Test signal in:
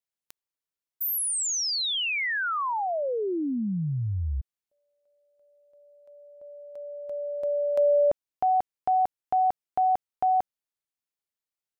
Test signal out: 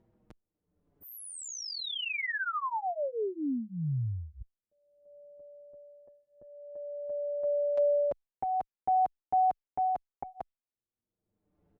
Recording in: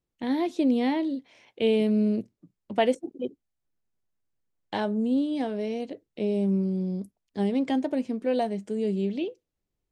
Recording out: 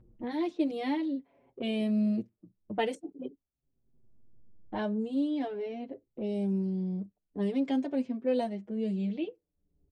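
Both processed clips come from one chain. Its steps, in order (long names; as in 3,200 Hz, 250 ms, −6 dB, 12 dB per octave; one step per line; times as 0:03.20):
low-pass that shuts in the quiet parts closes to 320 Hz, open at −21 dBFS
upward compression, threshold −30 dBFS
barber-pole flanger 5.9 ms −0.46 Hz
level −2 dB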